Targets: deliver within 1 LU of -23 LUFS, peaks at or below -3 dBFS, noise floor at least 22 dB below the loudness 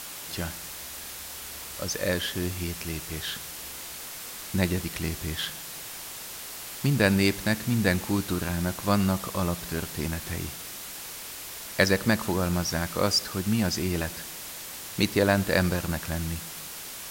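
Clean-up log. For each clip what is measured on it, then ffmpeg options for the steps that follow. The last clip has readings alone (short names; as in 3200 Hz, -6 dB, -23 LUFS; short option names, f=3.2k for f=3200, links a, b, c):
noise floor -40 dBFS; noise floor target -51 dBFS; loudness -28.5 LUFS; peak -4.0 dBFS; loudness target -23.0 LUFS
-> -af "afftdn=nr=11:nf=-40"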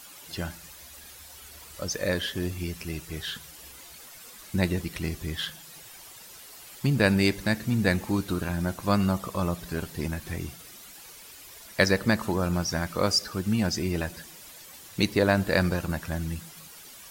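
noise floor -47 dBFS; noise floor target -50 dBFS
-> -af "afftdn=nr=6:nf=-47"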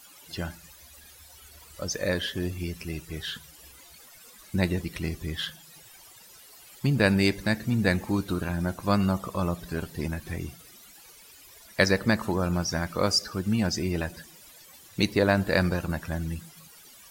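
noise floor -52 dBFS; loudness -28.0 LUFS; peak -4.0 dBFS; loudness target -23.0 LUFS
-> -af "volume=5dB,alimiter=limit=-3dB:level=0:latency=1"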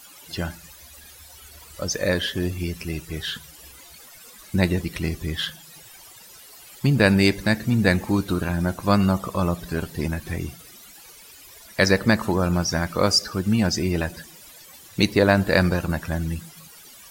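loudness -23.0 LUFS; peak -3.0 dBFS; noise floor -47 dBFS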